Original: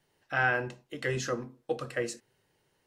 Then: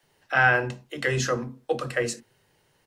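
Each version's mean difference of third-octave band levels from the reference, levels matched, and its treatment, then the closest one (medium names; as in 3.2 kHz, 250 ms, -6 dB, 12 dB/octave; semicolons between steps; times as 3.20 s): 1.5 dB: bands offset in time highs, lows 30 ms, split 330 Hz; trim +7.5 dB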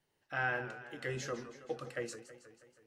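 3.5 dB: modulated delay 161 ms, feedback 62%, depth 178 cents, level -13 dB; trim -7.5 dB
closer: first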